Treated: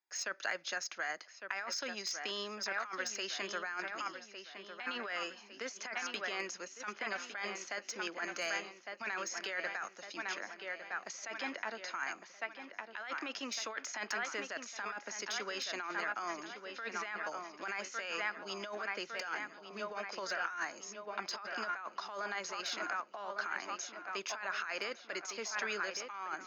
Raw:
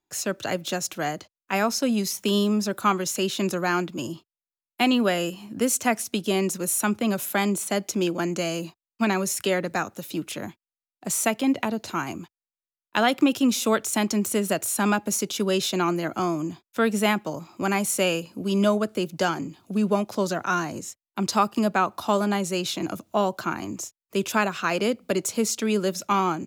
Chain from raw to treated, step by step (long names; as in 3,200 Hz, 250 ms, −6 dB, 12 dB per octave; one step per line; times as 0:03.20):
high-pass filter 610 Hz 12 dB per octave
delay with a low-pass on its return 1,156 ms, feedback 50%, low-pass 3,600 Hz, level −9 dB
dynamic equaliser 1,600 Hz, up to +5 dB, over −39 dBFS, Q 1.7
compressor whose output falls as the input rises −29 dBFS, ratio −1
Chebyshev low-pass with heavy ripple 6,700 Hz, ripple 9 dB
slew-rate limiting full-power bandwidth 210 Hz
level −4.5 dB